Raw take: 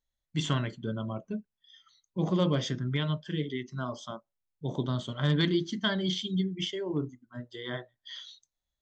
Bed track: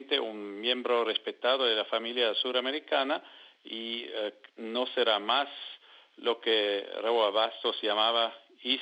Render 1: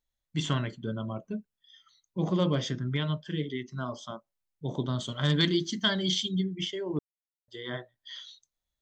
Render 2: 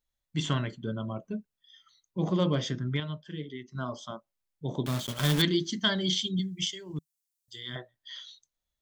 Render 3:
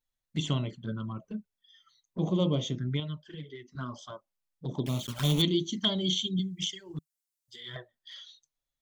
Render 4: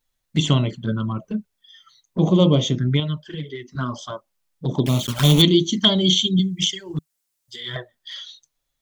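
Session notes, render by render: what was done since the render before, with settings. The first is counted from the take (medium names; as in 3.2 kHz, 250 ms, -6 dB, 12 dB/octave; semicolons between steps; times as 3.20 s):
5.00–6.29 s: treble shelf 4.2 kHz +12 dB; 6.99–7.48 s: mute
3.00–3.75 s: gain -6 dB; 4.86–5.42 s: block-companded coder 3-bit; 6.39–7.76 s: FFT filter 160 Hz 0 dB, 570 Hz -17 dB, 7.3 kHz +12 dB
touch-sensitive flanger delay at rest 7.8 ms, full sweep at -27 dBFS
trim +11.5 dB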